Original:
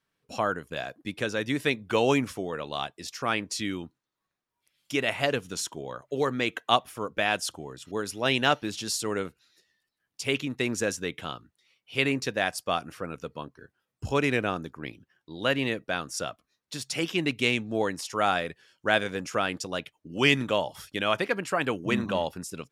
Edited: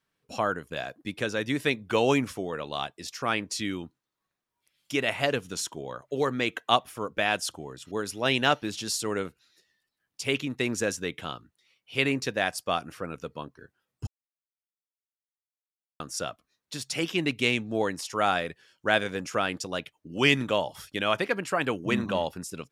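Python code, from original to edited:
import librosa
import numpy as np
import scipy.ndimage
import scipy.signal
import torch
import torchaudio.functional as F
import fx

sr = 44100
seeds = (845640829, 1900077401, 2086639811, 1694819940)

y = fx.edit(x, sr, fx.silence(start_s=14.07, length_s=1.93), tone=tone)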